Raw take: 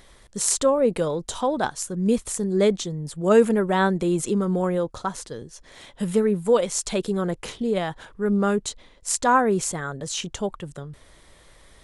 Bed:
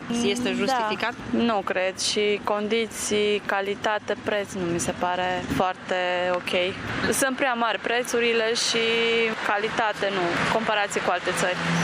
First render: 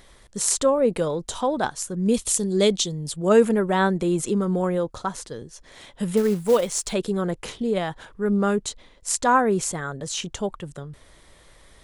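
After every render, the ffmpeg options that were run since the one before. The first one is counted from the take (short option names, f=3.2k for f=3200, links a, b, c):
-filter_complex "[0:a]asettb=1/sr,asplit=3[a][b][c];[a]atrim=end=2.144[d];[b]atrim=start=2.14:end=3.16,asetpts=PTS-STARTPTS,afade=t=in:d=0.004:c=qsin,afade=t=out:st=1.016:d=0.004:c=qsin,highshelf=f=2.4k:t=q:w=1.5:g=7[e];[c]atrim=start=3.156[f];[d][e]acrossfade=d=0.004:c1=hsin:c2=qsin[g];[g][f]acrossfade=d=0.004:c1=qsin:c2=hsin,asettb=1/sr,asplit=3[h][i][j];[h]atrim=end=6.174[k];[i]atrim=start=6.17:end=6.93,asetpts=PTS-STARTPTS,afade=t=in:d=0.004:c=qsin,afade=t=out:st=0.756:d=0.004:c=qsin,acrusher=bits=5:mode=log:mix=0:aa=0.000001[l];[j]atrim=start=6.926[m];[k][l]acrossfade=d=0.004:c1=hsin:c2=qsin[n];[n][m]acrossfade=d=0.004:c1=qsin:c2=hsin"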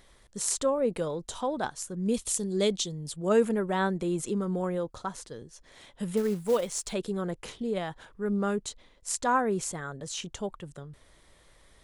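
-af "volume=-7dB"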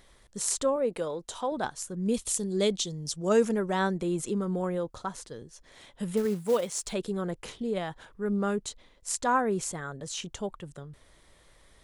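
-filter_complex "[0:a]asettb=1/sr,asplit=3[a][b][c];[a]atrim=end=0.764[d];[b]atrim=start=0.76:end=1.52,asetpts=PTS-STARTPTS,afade=t=in:d=0.004:c=qsin,afade=t=out:st=0.756:d=0.004:c=qsin,bass=f=250:g=-8,treble=f=4k:g=-1[e];[c]atrim=start=1.516[f];[d][e]acrossfade=d=0.004:c1=hsin:c2=qsin[g];[g][f]acrossfade=d=0.004:c1=qsin:c2=hsin,asettb=1/sr,asplit=3[h][i][j];[h]atrim=end=2.874[k];[i]atrim=start=2.87:end=3.95,asetpts=PTS-STARTPTS,afade=t=in:d=0.004:c=qsin,afade=t=out:st=1.076:d=0.004:c=qsin,equalizer=f=5.8k:w=2.7:g=13.5[l];[j]atrim=start=3.946[m];[k][l]acrossfade=d=0.004:c1=hsin:c2=qsin[n];[n][m]acrossfade=d=0.004:c1=qsin:c2=hsin,asettb=1/sr,asplit=3[o][p][q];[o]atrim=end=6.254[r];[p]atrim=start=6.25:end=6.8,asetpts=PTS-STARTPTS,afade=t=in:d=0.004:c=qsin,afade=t=out:st=0.546:d=0.004:c=qsin,highpass=64[s];[q]atrim=start=6.796[t];[r][s]acrossfade=d=0.004:c1=hsin:c2=qsin[u];[u][t]acrossfade=d=0.004:c1=qsin:c2=hsin"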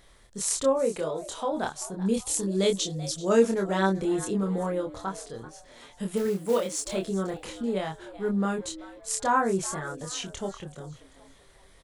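-filter_complex "[0:a]asplit=2[a][b];[b]adelay=26,volume=-3dB[c];[a][c]amix=inputs=2:normalize=0,asplit=4[d][e][f][g];[e]adelay=385,afreqshift=120,volume=-17dB[h];[f]adelay=770,afreqshift=240,volume=-25.2dB[i];[g]adelay=1155,afreqshift=360,volume=-33.4dB[j];[d][h][i][j]amix=inputs=4:normalize=0"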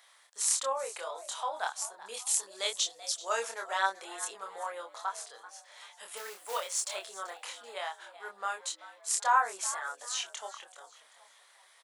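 -af "highpass=f=760:w=0.5412,highpass=f=760:w=1.3066"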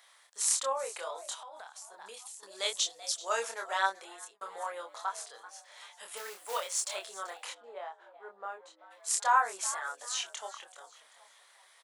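-filter_complex "[0:a]asettb=1/sr,asplit=3[a][b][c];[a]atrim=end=1.344[d];[b]atrim=start=1.34:end=2.43,asetpts=PTS-STARTPTS,afade=t=in:d=0.004:c=qsin,afade=t=out:st=1.086:d=0.004:c=qsin,acompressor=threshold=-43dB:ratio=16:attack=3.2:release=140:knee=1:detection=peak[e];[c]atrim=start=2.426[f];[d][e]acrossfade=d=0.004:c1=hsin:c2=qsin[g];[g][f]acrossfade=d=0.004:c1=qsin:c2=hsin,asplit=3[h][i][j];[h]afade=t=out:st=7.53:d=0.02[k];[i]bandpass=f=420:t=q:w=0.83,afade=t=in:st=7.53:d=0.02,afade=t=out:st=8.9:d=0.02[l];[j]afade=t=in:st=8.9:d=0.02[m];[k][l][m]amix=inputs=3:normalize=0,asplit=2[n][o];[n]atrim=end=4.41,asetpts=PTS-STARTPTS,afade=t=out:st=3.87:d=0.54[p];[o]atrim=start=4.41,asetpts=PTS-STARTPTS,afade=t=in:d=0.004:c=hsin[q];[p][q]concat=n=2:v=0:a=1"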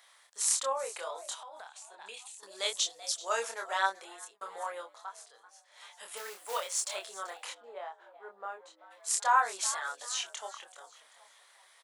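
-filter_complex "[0:a]asettb=1/sr,asplit=3[a][b][c];[a]atrim=end=1.684[d];[b]atrim=start=1.68:end=2.38,asetpts=PTS-STARTPTS,afade=t=in:d=0.004:c=qsin,afade=t=out:st=0.696:d=0.004:c=qsin,highpass=210,equalizer=f=490:t=q:w=4:g=-3,equalizer=f=1.2k:t=q:w=4:g=-4,equalizer=f=2.6k:t=q:w=4:g=9,equalizer=f=3.7k:t=q:w=4:g=4,equalizer=f=5.4k:t=q:w=4:g=-6,lowpass=f=9.6k:w=0.5412,lowpass=f=9.6k:w=1.3066[e];[c]atrim=start=2.376[f];[d][e]acrossfade=d=0.004:c1=hsin:c2=qsin[g];[g][f]acrossfade=d=0.004:c1=qsin:c2=hsin,asettb=1/sr,asplit=3[h][i][j];[h]atrim=end=9.384[k];[i]atrim=start=9.38:end=10.07,asetpts=PTS-STARTPTS,afade=t=in:d=0.004:c=qsin,afade=t=out:st=0.686:d=0.004:c=qsin,equalizer=f=3.9k:t=o:w=0.96:g=8.5[l];[j]atrim=start=10.066[m];[k][l]acrossfade=d=0.004:c1=hsin:c2=qsin[n];[n][m]acrossfade=d=0.004:c1=qsin:c2=hsin,asplit=3[o][p][q];[o]atrim=end=4.95,asetpts=PTS-STARTPTS,afade=t=out:st=4.79:d=0.16:silence=0.375837[r];[p]atrim=start=4.95:end=5.71,asetpts=PTS-STARTPTS,volume=-8.5dB[s];[q]atrim=start=5.71,asetpts=PTS-STARTPTS,afade=t=in:d=0.16:silence=0.375837[t];[r][s][t]concat=n=3:v=0:a=1"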